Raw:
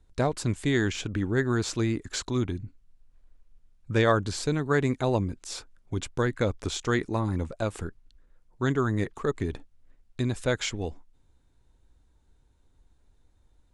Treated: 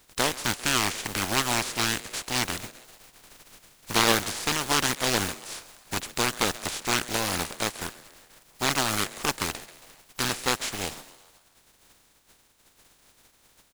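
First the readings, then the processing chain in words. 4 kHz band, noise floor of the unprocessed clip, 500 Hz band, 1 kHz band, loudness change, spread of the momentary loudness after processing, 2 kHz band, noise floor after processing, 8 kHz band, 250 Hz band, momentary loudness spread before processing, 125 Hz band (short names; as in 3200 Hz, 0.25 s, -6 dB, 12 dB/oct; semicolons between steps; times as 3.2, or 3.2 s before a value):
+10.5 dB, -64 dBFS, -4.5 dB, +5.0 dB, +2.0 dB, 11 LU, +5.0 dB, -63 dBFS, +11.0 dB, -5.0 dB, 12 LU, -8.5 dB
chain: spectral contrast lowered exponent 0.23; frequency-shifting echo 0.135 s, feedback 55%, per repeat +130 Hz, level -18 dB; Doppler distortion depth 0.61 ms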